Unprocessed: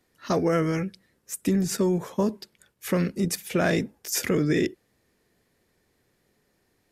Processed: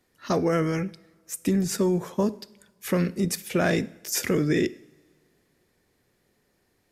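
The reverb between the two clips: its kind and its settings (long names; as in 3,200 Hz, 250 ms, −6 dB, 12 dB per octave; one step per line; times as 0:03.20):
coupled-rooms reverb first 0.7 s, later 2.5 s, from −18 dB, DRR 17.5 dB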